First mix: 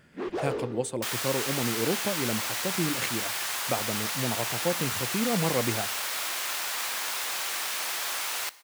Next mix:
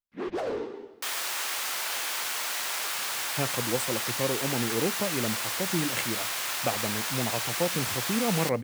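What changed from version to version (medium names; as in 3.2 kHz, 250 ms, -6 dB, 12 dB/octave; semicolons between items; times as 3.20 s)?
speech: entry +2.95 s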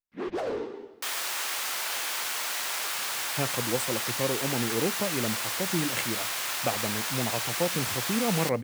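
no change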